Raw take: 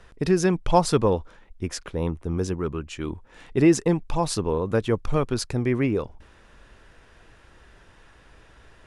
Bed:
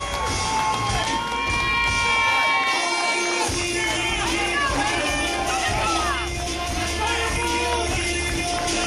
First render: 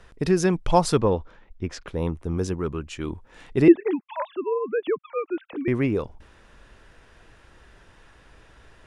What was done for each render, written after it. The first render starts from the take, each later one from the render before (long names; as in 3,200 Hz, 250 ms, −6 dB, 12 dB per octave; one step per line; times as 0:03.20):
0:00.97–0:01.88: high-frequency loss of the air 110 metres
0:03.68–0:05.68: three sine waves on the formant tracks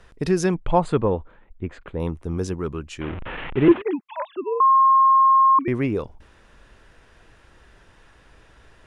0:00.54–0:02.00: moving average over 8 samples
0:03.01–0:03.82: linear delta modulator 16 kbit/s, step −25.5 dBFS
0:04.60–0:05.59: beep over 1,070 Hz −11.5 dBFS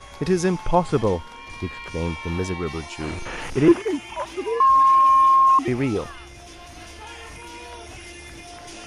mix in bed −16 dB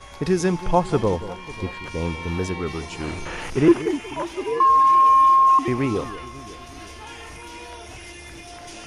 delay that swaps between a low-pass and a high-pass 182 ms, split 1,000 Hz, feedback 74%, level −14 dB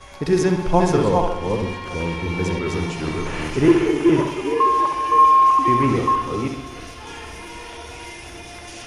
delay that plays each chunk backwards 324 ms, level −2 dB
bucket-brigade delay 65 ms, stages 2,048, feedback 53%, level −6 dB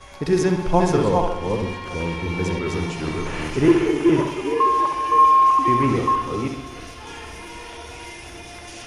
level −1 dB